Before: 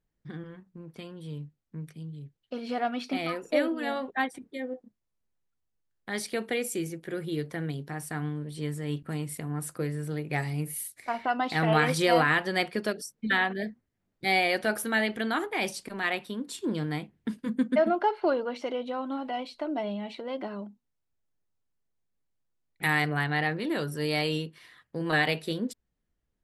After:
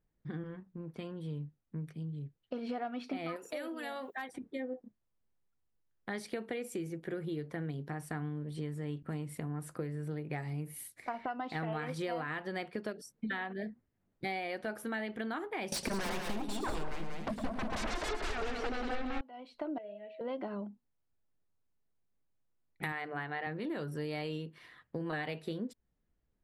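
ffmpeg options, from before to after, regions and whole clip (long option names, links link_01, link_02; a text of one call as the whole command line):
ffmpeg -i in.wav -filter_complex "[0:a]asettb=1/sr,asplit=3[link_01][link_02][link_03];[link_01]atrim=end=3.364[link_04];[link_02]atrim=start=3.36:end=4.29,asetpts=PTS-STARTPTS,afade=type=in:duration=0.004:curve=qsin,afade=type=out:start_time=0.926:duration=0.004:curve=qsin,aemphasis=mode=production:type=riaa,acompressor=threshold=-41dB:ratio=2:attack=3.2:release=140:knee=1:detection=peak,volume=27dB,asoftclip=hard,volume=-27dB[link_05];[link_03]atrim=start=4.286[link_06];[link_04][link_05]acrossfade=duration=0.004:curve1=hsin:curve2=qsin[link_07];[link_07][link_06]acrossfade=duration=0.004:curve1=qsin:curve2=hsin,asettb=1/sr,asplit=3[link_08][link_09][link_10];[link_08]atrim=end=15.724[link_11];[link_09]atrim=start=15.72:end=19.21,asetpts=PTS-STARTPTS,afade=type=in:duration=0.004:curve=qsin,afade=type=out:start_time=3.486:duration=0.004:curve=qsin,aeval=exprs='0.211*sin(PI/2*10*val(0)/0.211)':channel_layout=same,asubboost=boost=10.5:cutoff=52,aecho=1:1:109|187|264|864:0.316|0.562|0.237|0.106,atrim=end_sample=153909[link_12];[link_10]atrim=start=19.206[link_13];[link_11][link_12]acrossfade=duration=0.004:curve1=hsin:curve2=qsin[link_14];[link_14][link_13]acrossfade=duration=0.004:curve1=qsin:curve2=hsin,asettb=1/sr,asplit=3[link_15][link_16][link_17];[link_15]atrim=end=19.784[link_18];[link_16]atrim=start=19.78:end=20.21,asetpts=PTS-STARTPTS,afade=type=in:duration=0.004:curve=qsin,afade=type=out:start_time=0.426:duration=0.004:curve=qsin,asplit=3[link_19][link_20][link_21];[link_19]bandpass=frequency=530:width_type=q:width=8,volume=0dB[link_22];[link_20]bandpass=frequency=1840:width_type=q:width=8,volume=-6dB[link_23];[link_21]bandpass=frequency=2480:width_type=q:width=8,volume=-9dB[link_24];[link_22][link_23][link_24]amix=inputs=3:normalize=0,aeval=exprs='val(0)+0.00355*sin(2*PI*640*n/s)':channel_layout=same[link_25];[link_17]atrim=start=20.206[link_26];[link_18][link_25]acrossfade=duration=0.004:curve1=hsin:curve2=qsin[link_27];[link_27][link_26]acrossfade=duration=0.004:curve1=qsin:curve2=hsin,asettb=1/sr,asplit=3[link_28][link_29][link_30];[link_28]atrim=end=22.924[link_31];[link_29]atrim=start=22.92:end=23.47,asetpts=PTS-STARTPTS,afade=type=in:duration=0.004:curve=qsin,afade=type=out:start_time=0.546:duration=0.004:curve=qsin,bass=frequency=250:gain=-8,treble=frequency=4000:gain=-7,bandreject=frequency=50:width_type=h:width=6,bandreject=frequency=100:width_type=h:width=6,bandreject=frequency=150:width_type=h:width=6,bandreject=frequency=200:width_type=h:width=6,bandreject=frequency=250:width_type=h:width=6,bandreject=frequency=300:width_type=h:width=6[link_32];[link_30]atrim=start=23.466[link_33];[link_31][link_32]acrossfade=duration=0.004:curve1=hsin:curve2=qsin[link_34];[link_34][link_33]acrossfade=duration=0.004:curve1=qsin:curve2=hsin,highshelf=frequency=3000:gain=-11,acompressor=threshold=-36dB:ratio=6,volume=1dB" out.wav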